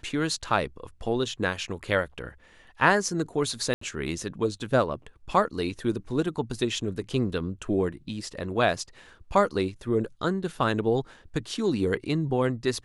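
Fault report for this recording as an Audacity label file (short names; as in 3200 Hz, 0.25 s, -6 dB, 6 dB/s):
3.740000	3.810000	gap 74 ms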